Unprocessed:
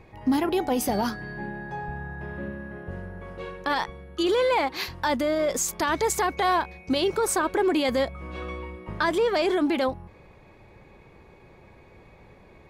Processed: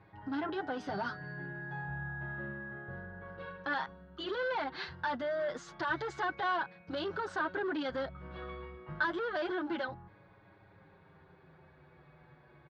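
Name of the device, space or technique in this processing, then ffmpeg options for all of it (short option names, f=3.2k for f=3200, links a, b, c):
barber-pole flanger into a guitar amplifier: -filter_complex "[0:a]asplit=2[a][b];[b]adelay=6.9,afreqshift=-0.29[c];[a][c]amix=inputs=2:normalize=1,asoftclip=type=tanh:threshold=-24.5dB,highpass=90,equalizer=f=150:t=q:w=4:g=7,equalizer=f=230:t=q:w=4:g=-7,equalizer=f=460:t=q:w=4:g=-5,equalizer=f=1.5k:t=q:w=4:g=10,equalizer=f=2.4k:t=q:w=4:g=-8,lowpass=f=4.1k:w=0.5412,lowpass=f=4.1k:w=1.3066,volume=-4.5dB"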